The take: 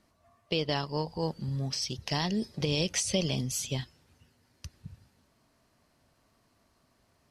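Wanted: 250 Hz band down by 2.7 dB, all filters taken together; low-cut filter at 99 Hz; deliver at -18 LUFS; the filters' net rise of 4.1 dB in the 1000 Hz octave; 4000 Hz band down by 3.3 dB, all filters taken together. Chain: HPF 99 Hz; bell 250 Hz -4 dB; bell 1000 Hz +5.5 dB; bell 4000 Hz -5 dB; gain +14.5 dB

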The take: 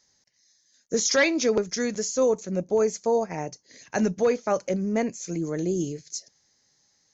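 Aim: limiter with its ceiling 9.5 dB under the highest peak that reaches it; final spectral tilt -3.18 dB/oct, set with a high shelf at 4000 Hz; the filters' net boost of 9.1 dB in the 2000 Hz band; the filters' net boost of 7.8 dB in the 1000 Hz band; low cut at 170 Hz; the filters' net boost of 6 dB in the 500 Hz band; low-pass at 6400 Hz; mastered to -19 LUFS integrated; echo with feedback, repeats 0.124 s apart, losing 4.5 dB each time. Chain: HPF 170 Hz; LPF 6400 Hz; bell 500 Hz +5 dB; bell 1000 Hz +6.5 dB; bell 2000 Hz +7 dB; high shelf 4000 Hz +7.5 dB; limiter -11.5 dBFS; feedback echo 0.124 s, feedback 60%, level -4.5 dB; gain +2 dB

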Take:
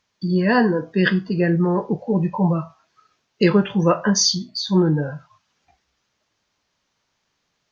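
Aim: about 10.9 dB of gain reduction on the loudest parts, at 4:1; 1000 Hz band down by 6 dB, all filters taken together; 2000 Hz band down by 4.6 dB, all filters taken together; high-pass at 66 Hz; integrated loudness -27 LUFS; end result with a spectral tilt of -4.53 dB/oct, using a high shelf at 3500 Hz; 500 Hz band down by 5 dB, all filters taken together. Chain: HPF 66 Hz; bell 500 Hz -6 dB; bell 1000 Hz -5 dB; bell 2000 Hz -6 dB; high shelf 3500 Hz +9 dB; compressor 4:1, threshold -22 dBFS; gain -1 dB

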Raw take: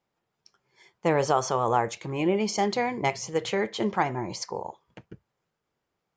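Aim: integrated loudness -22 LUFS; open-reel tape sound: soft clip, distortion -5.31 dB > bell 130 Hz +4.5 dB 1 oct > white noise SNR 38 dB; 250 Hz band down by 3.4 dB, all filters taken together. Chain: bell 250 Hz -7 dB; soft clip -30 dBFS; bell 130 Hz +4.5 dB 1 oct; white noise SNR 38 dB; gain +12.5 dB

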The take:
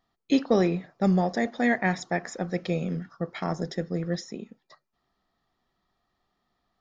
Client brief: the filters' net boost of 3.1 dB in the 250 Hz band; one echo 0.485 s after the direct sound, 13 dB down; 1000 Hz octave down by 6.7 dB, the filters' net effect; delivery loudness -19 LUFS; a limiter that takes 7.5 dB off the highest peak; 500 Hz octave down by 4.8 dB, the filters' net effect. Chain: bell 250 Hz +6 dB; bell 500 Hz -7 dB; bell 1000 Hz -7 dB; limiter -16.5 dBFS; echo 0.485 s -13 dB; gain +9.5 dB

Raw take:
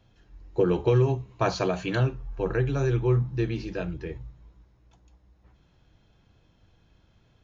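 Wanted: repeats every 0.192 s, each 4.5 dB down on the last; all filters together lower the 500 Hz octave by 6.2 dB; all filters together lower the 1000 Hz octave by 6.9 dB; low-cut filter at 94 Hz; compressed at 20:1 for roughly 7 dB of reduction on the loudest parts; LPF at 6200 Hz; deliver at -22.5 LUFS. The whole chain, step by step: HPF 94 Hz; LPF 6200 Hz; bell 500 Hz -7 dB; bell 1000 Hz -7 dB; compressor 20:1, threshold -27 dBFS; feedback echo 0.192 s, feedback 60%, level -4.5 dB; gain +9.5 dB

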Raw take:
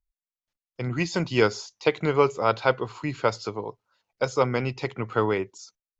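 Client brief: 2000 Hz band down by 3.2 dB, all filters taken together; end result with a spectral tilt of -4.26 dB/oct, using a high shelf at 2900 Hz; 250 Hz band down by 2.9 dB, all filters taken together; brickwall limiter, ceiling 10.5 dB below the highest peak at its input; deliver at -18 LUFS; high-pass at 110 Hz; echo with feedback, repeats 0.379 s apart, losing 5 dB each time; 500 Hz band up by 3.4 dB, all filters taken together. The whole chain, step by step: HPF 110 Hz; bell 250 Hz -7 dB; bell 500 Hz +6 dB; bell 2000 Hz -8 dB; high shelf 2900 Hz +8 dB; limiter -15 dBFS; feedback echo 0.379 s, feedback 56%, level -5 dB; gain +9 dB

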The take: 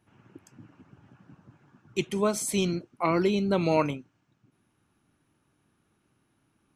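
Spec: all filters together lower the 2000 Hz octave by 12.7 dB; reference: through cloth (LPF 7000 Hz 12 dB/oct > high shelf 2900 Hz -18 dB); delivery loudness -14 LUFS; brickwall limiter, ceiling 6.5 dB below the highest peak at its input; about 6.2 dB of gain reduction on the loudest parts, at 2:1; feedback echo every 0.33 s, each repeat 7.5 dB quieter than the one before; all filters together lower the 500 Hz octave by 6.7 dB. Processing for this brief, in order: bell 500 Hz -8.5 dB; bell 2000 Hz -8 dB; compressor 2:1, threshold -35 dBFS; limiter -29 dBFS; LPF 7000 Hz 12 dB/oct; high shelf 2900 Hz -18 dB; feedback echo 0.33 s, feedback 42%, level -7.5 dB; gain +25.5 dB

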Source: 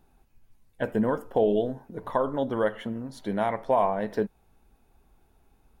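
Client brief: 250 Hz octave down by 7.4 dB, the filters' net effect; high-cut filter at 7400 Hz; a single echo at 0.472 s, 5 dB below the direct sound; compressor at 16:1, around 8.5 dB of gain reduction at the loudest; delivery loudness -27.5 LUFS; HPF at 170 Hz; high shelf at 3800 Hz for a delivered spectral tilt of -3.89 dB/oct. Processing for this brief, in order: HPF 170 Hz; LPF 7400 Hz; bell 250 Hz -8 dB; high shelf 3800 Hz +6 dB; compressor 16:1, threshold -27 dBFS; echo 0.472 s -5 dB; gain +6.5 dB

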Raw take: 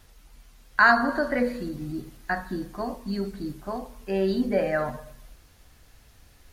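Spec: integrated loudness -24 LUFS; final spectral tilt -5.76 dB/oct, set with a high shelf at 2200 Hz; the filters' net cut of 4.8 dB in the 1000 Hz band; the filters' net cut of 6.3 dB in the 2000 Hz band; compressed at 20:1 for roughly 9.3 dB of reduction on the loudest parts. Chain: bell 1000 Hz -4.5 dB; bell 2000 Hz -5 dB; high shelf 2200 Hz -3.5 dB; compressor 20:1, threshold -27 dBFS; gain +10.5 dB

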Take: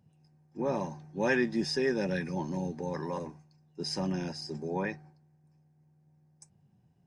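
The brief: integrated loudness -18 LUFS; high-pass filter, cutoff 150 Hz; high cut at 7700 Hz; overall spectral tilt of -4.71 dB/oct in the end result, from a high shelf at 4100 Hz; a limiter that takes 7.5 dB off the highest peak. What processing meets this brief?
HPF 150 Hz; LPF 7700 Hz; high shelf 4100 Hz +6 dB; gain +16.5 dB; limiter -6.5 dBFS

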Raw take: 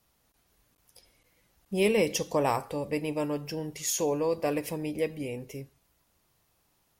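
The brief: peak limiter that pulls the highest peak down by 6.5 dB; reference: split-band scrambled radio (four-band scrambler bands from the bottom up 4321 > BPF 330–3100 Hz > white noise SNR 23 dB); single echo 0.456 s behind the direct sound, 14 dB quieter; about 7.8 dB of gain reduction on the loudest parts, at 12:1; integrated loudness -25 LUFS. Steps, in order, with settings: compressor 12:1, threshold -28 dBFS; limiter -25 dBFS; echo 0.456 s -14 dB; four-band scrambler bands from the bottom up 4321; BPF 330–3100 Hz; white noise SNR 23 dB; gain +15.5 dB

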